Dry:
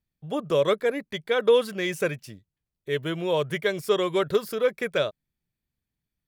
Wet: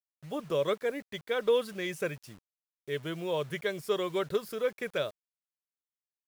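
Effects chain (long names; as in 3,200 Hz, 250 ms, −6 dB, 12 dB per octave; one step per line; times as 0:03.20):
bit reduction 8 bits
level −7 dB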